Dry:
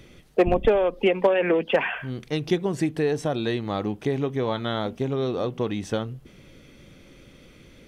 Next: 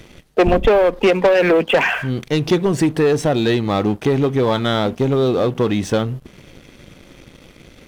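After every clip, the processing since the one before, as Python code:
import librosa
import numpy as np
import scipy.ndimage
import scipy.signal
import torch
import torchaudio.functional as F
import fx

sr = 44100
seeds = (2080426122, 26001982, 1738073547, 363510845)

y = fx.leveller(x, sr, passes=2)
y = y * librosa.db_to_amplitude(3.0)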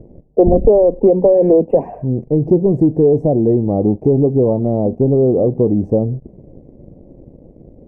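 y = scipy.signal.sosfilt(scipy.signal.cheby2(4, 40, 1300.0, 'lowpass', fs=sr, output='sos'), x)
y = y * librosa.db_to_amplitude(4.0)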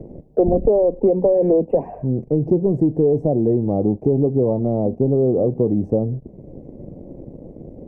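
y = fx.band_squash(x, sr, depth_pct=40)
y = y * librosa.db_to_amplitude(-4.5)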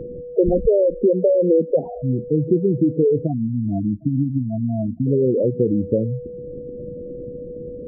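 y = fx.spec_gate(x, sr, threshold_db=-10, keep='strong')
y = y + 10.0 ** (-31.0 / 20.0) * np.sin(2.0 * np.pi * 490.0 * np.arange(len(y)) / sr)
y = fx.spec_erase(y, sr, start_s=3.27, length_s=1.8, low_hz=320.0, high_hz=640.0)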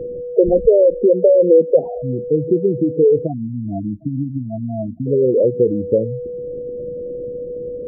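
y = fx.curve_eq(x, sr, hz=(270.0, 490.0, 1200.0), db=(0, 9, 0))
y = y * librosa.db_to_amplitude(-2.5)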